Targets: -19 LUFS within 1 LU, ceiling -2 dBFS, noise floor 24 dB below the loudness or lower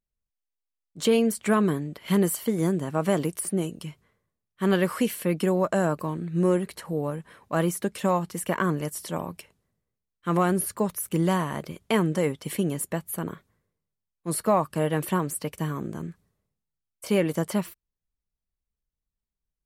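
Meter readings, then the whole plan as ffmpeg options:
loudness -26.5 LUFS; peak -11.5 dBFS; loudness target -19.0 LUFS
-> -af "volume=7.5dB"

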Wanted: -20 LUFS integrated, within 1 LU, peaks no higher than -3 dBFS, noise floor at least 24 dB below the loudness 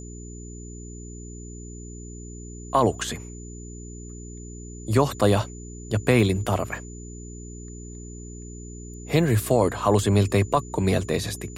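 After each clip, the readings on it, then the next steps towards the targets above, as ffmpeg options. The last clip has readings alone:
hum 60 Hz; harmonics up to 420 Hz; hum level -37 dBFS; steady tone 7000 Hz; tone level -45 dBFS; loudness -23.0 LUFS; peak -7.5 dBFS; loudness target -20.0 LUFS
-> -af "bandreject=f=60:t=h:w=4,bandreject=f=120:t=h:w=4,bandreject=f=180:t=h:w=4,bandreject=f=240:t=h:w=4,bandreject=f=300:t=h:w=4,bandreject=f=360:t=h:w=4,bandreject=f=420:t=h:w=4"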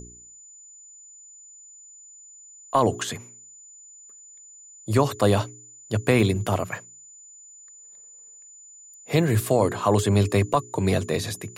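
hum none; steady tone 7000 Hz; tone level -45 dBFS
-> -af "bandreject=f=7k:w=30"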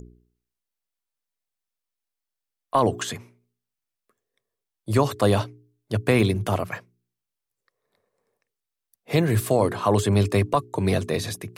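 steady tone none; loudness -23.5 LUFS; peak -7.5 dBFS; loudness target -20.0 LUFS
-> -af "volume=3.5dB"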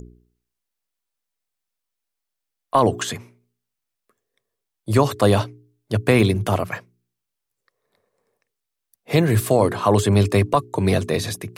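loudness -20.0 LUFS; peak -4.0 dBFS; noise floor -82 dBFS

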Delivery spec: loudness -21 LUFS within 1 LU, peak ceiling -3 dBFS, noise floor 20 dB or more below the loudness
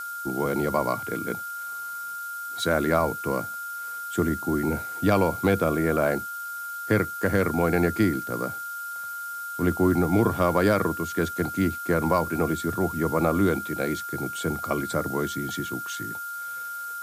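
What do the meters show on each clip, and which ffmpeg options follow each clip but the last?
steady tone 1400 Hz; tone level -32 dBFS; noise floor -35 dBFS; noise floor target -46 dBFS; loudness -26.0 LUFS; peak -8.5 dBFS; loudness target -21.0 LUFS
-> -af "bandreject=f=1.4k:w=30"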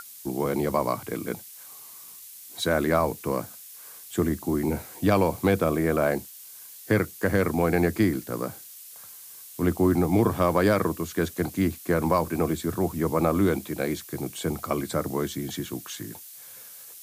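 steady tone none; noise floor -45 dBFS; noise floor target -46 dBFS
-> -af "afftdn=nr=6:nf=-45"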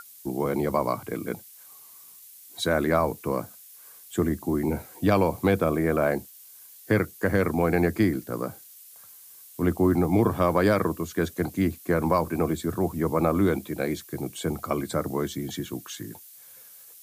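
noise floor -49 dBFS; loudness -26.0 LUFS; peak -8.5 dBFS; loudness target -21.0 LUFS
-> -af "volume=5dB"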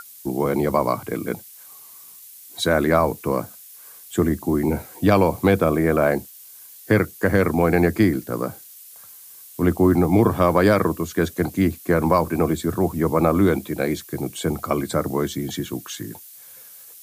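loudness -21.0 LUFS; peak -3.5 dBFS; noise floor -44 dBFS

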